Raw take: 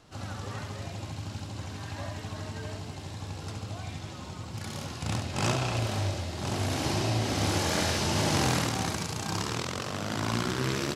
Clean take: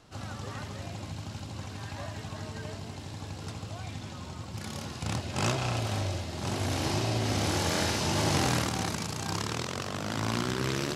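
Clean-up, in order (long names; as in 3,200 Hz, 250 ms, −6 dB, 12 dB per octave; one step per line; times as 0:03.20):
clipped peaks rebuilt −16 dBFS
echo removal 70 ms −6.5 dB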